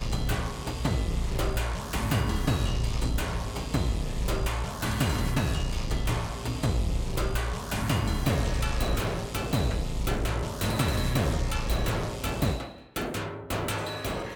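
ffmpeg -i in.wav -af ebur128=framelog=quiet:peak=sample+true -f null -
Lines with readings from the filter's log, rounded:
Integrated loudness:
  I:         -29.5 LUFS
  Threshold: -39.5 LUFS
Loudness range:
  LRA:         0.9 LU
  Threshold: -49.3 LUFS
  LRA low:   -29.7 LUFS
  LRA high:  -28.8 LUFS
Sample peak:
  Peak:      -12.8 dBFS
True peak:
  Peak:      -12.4 dBFS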